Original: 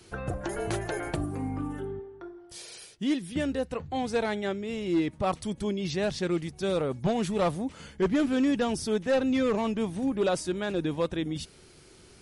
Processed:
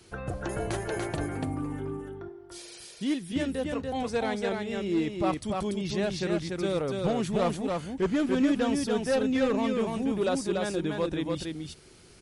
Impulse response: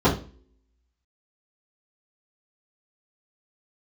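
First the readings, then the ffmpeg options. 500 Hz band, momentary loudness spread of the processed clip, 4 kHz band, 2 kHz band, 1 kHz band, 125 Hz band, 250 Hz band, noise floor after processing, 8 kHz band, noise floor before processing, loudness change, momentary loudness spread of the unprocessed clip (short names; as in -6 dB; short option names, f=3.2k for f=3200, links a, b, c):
0.0 dB, 11 LU, 0.0 dB, 0.0 dB, 0.0 dB, 0.0 dB, 0.0 dB, -52 dBFS, 0.0 dB, -54 dBFS, 0.0 dB, 11 LU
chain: -af "aecho=1:1:289:0.668,volume=-1.5dB"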